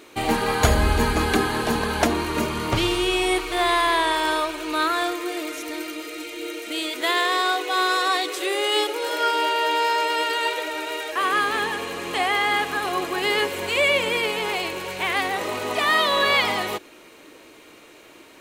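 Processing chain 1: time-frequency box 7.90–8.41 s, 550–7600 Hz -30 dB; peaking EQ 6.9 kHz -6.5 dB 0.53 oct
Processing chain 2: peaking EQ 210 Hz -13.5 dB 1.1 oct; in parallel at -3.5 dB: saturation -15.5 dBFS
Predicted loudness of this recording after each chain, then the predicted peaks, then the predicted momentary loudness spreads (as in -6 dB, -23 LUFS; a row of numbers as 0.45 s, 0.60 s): -22.5 LUFS, -19.5 LUFS; -4.5 dBFS, -2.5 dBFS; 10 LU, 9 LU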